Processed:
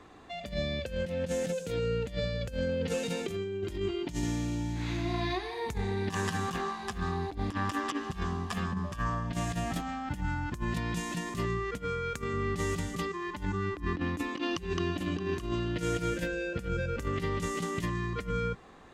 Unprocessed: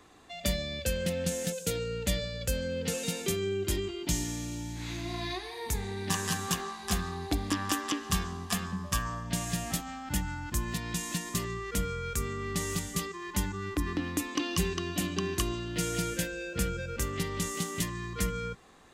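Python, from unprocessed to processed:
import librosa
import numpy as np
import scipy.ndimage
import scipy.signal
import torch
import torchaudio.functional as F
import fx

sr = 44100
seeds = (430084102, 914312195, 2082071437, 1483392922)

y = fx.lowpass(x, sr, hz=2100.0, slope=6)
y = fx.over_compress(y, sr, threshold_db=-34.0, ratio=-0.5)
y = fx.low_shelf(y, sr, hz=140.0, db=-9.0, at=(11.78, 12.34))
y = y * librosa.db_to_amplitude(3.0)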